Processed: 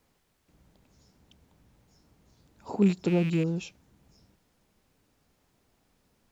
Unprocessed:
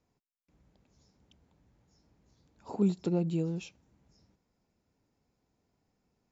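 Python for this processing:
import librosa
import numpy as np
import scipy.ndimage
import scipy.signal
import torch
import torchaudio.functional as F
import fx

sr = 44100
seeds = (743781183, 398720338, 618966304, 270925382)

y = fx.rattle_buzz(x, sr, strikes_db=-33.0, level_db=-34.0)
y = fx.dmg_noise_colour(y, sr, seeds[0], colour='pink', level_db=-77.0)
y = F.gain(torch.from_numpy(y), 4.5).numpy()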